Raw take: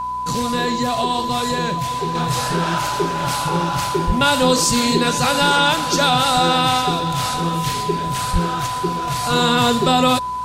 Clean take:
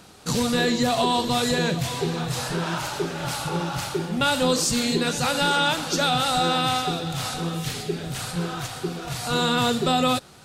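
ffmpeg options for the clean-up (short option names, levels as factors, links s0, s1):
-filter_complex "[0:a]bandreject=f=61.2:t=h:w=4,bandreject=f=122.4:t=h:w=4,bandreject=f=183.6:t=h:w=4,bandreject=f=244.8:t=h:w=4,bandreject=f=1000:w=30,asplit=3[s0][s1][s2];[s0]afade=t=out:st=4.06:d=0.02[s3];[s1]highpass=f=140:w=0.5412,highpass=f=140:w=1.3066,afade=t=in:st=4.06:d=0.02,afade=t=out:st=4.18:d=0.02[s4];[s2]afade=t=in:st=4.18:d=0.02[s5];[s3][s4][s5]amix=inputs=3:normalize=0,asplit=3[s6][s7][s8];[s6]afade=t=out:st=8.32:d=0.02[s9];[s7]highpass=f=140:w=0.5412,highpass=f=140:w=1.3066,afade=t=in:st=8.32:d=0.02,afade=t=out:st=8.44:d=0.02[s10];[s8]afade=t=in:st=8.44:d=0.02[s11];[s9][s10][s11]amix=inputs=3:normalize=0,asetnsamples=n=441:p=0,asendcmd='2.15 volume volume -5.5dB',volume=1"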